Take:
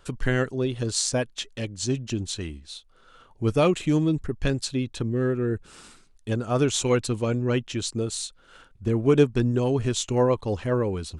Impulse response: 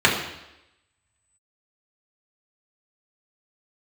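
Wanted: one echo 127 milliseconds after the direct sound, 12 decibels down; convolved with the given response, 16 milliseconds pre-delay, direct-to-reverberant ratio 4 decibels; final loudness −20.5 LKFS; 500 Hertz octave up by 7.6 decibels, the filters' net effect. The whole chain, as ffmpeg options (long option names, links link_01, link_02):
-filter_complex "[0:a]equalizer=frequency=500:width_type=o:gain=9,aecho=1:1:127:0.251,asplit=2[link_01][link_02];[1:a]atrim=start_sample=2205,adelay=16[link_03];[link_02][link_03]afir=irnorm=-1:irlink=0,volume=-25.5dB[link_04];[link_01][link_04]amix=inputs=2:normalize=0,volume=-2dB"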